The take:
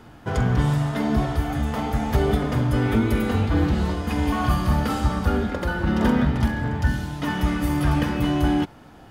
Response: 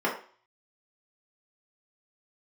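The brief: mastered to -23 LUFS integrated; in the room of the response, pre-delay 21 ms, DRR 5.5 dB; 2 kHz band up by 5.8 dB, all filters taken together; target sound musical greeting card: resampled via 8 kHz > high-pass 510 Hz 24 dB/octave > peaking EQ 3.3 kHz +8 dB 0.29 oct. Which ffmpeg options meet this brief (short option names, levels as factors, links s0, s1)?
-filter_complex "[0:a]equalizer=f=2000:t=o:g=7.5,asplit=2[s0][s1];[1:a]atrim=start_sample=2205,adelay=21[s2];[s1][s2]afir=irnorm=-1:irlink=0,volume=0.126[s3];[s0][s3]amix=inputs=2:normalize=0,aresample=8000,aresample=44100,highpass=f=510:w=0.5412,highpass=f=510:w=1.3066,equalizer=f=3300:t=o:w=0.29:g=8,volume=1.5"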